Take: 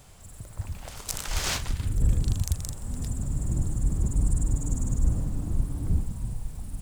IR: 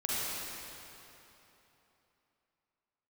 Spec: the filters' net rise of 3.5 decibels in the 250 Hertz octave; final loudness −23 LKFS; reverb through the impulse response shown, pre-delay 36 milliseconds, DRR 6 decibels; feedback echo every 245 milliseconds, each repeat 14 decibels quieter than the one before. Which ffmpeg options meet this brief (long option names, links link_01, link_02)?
-filter_complex "[0:a]equalizer=frequency=250:width_type=o:gain=5,aecho=1:1:245|490:0.2|0.0399,asplit=2[link_01][link_02];[1:a]atrim=start_sample=2205,adelay=36[link_03];[link_02][link_03]afir=irnorm=-1:irlink=0,volume=-13.5dB[link_04];[link_01][link_04]amix=inputs=2:normalize=0,volume=5dB"